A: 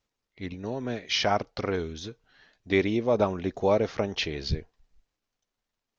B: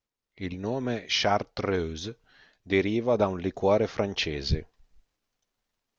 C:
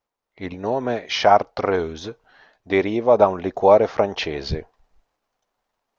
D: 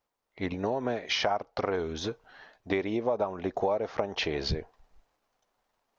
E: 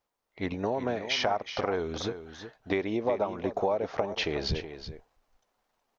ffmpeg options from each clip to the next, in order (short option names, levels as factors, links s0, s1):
-af "dynaudnorm=f=230:g=3:m=3.55,volume=0.398"
-af "equalizer=f=800:w=0.63:g=13.5,volume=0.891"
-af "acompressor=threshold=0.0501:ratio=6"
-af "aecho=1:1:370:0.282"